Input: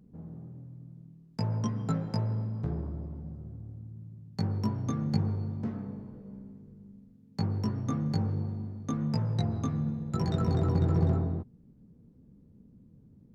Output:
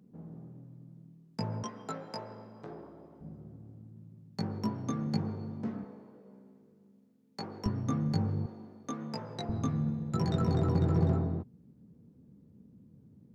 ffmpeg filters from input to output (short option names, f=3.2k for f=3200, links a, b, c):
-af "asetnsamples=n=441:p=0,asendcmd='1.63 highpass f 430;3.21 highpass f 170;5.84 highpass f 370;7.66 highpass f 88;8.46 highpass f 330;9.49 highpass f 90',highpass=160"